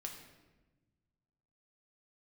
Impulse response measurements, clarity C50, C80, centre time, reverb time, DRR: 6.0 dB, 8.0 dB, 31 ms, 1.2 s, 1.5 dB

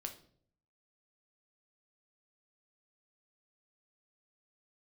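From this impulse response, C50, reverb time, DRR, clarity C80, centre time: 11.5 dB, 0.55 s, 3.5 dB, 16.0 dB, 12 ms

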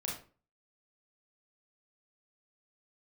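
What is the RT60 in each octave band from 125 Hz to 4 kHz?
0.50 s, 0.45 s, 0.40 s, 0.35 s, 0.30 s, 0.25 s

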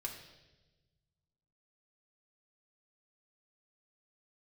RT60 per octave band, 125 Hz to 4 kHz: 2.3 s, 1.7 s, 1.4 s, 0.90 s, 1.0 s, 1.1 s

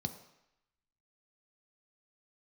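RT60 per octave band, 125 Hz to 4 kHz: 0.65 s, 0.70 s, 0.75 s, 0.90 s, 0.95 s, 0.85 s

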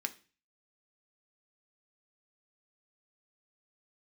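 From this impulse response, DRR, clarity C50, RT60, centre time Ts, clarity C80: 6.0 dB, 17.5 dB, 0.35 s, 4 ms, 22.5 dB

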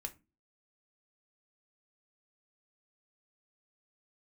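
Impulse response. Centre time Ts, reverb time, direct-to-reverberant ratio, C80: 6 ms, 0.30 s, 6.0 dB, 26.0 dB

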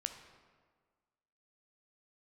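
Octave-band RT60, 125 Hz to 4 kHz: 1.5 s, 1.7 s, 1.6 s, 1.6 s, 1.3 s, 1.0 s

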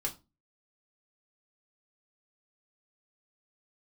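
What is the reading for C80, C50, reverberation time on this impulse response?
22.5 dB, 16.0 dB, 0.25 s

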